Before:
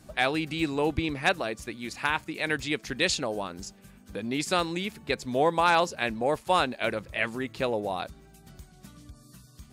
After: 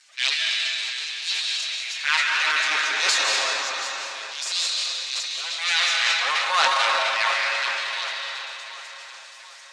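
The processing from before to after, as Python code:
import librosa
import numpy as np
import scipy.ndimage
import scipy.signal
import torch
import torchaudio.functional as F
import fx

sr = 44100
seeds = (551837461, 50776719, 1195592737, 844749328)

y = fx.lower_of_two(x, sr, delay_ms=7.4)
y = fx.filter_lfo_highpass(y, sr, shape='sine', hz=0.26, low_hz=880.0, high_hz=4500.0, q=1.4)
y = fx.highpass(y, sr, hz=fx.steps((0.0, 260.0), (5.72, 750.0)), slope=6)
y = fx.echo_feedback(y, sr, ms=732, feedback_pct=47, wet_db=-14)
y = fx.rev_freeverb(y, sr, rt60_s=3.2, hf_ratio=0.8, predelay_ms=110, drr_db=-1.5)
y = fx.transient(y, sr, attack_db=-8, sustain_db=9)
y = scipy.signal.sosfilt(scipy.signal.butter(4, 7100.0, 'lowpass', fs=sr, output='sos'), y)
y = fx.high_shelf(y, sr, hz=4900.0, db=9.0)
y = y * librosa.db_to_amplitude(4.0)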